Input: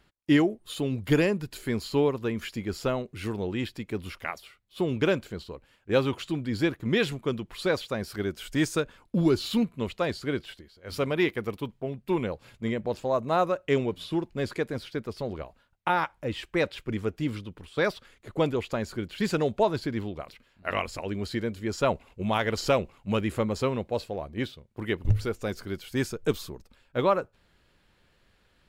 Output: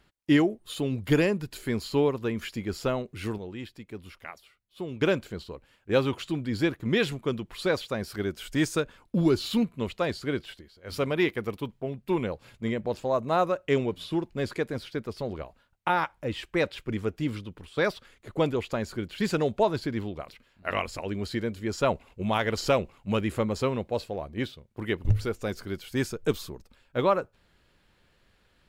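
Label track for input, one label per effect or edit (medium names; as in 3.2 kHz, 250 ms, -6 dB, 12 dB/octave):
3.380000	5.010000	gain -8 dB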